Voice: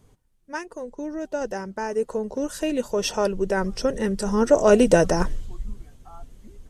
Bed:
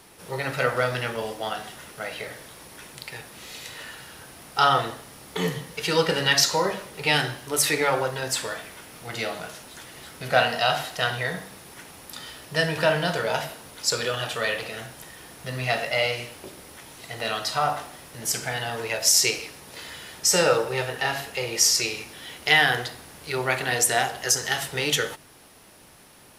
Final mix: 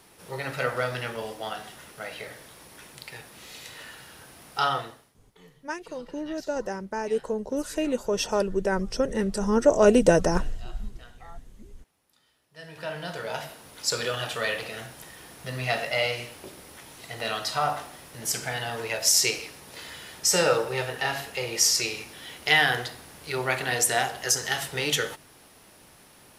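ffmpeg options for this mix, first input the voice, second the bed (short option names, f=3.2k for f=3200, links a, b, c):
-filter_complex "[0:a]adelay=5150,volume=-2dB[a];[1:a]volume=21.5dB,afade=t=out:st=4.54:d=0.62:silence=0.0668344,afade=t=in:st=12.53:d=1.47:silence=0.0530884[b];[a][b]amix=inputs=2:normalize=0"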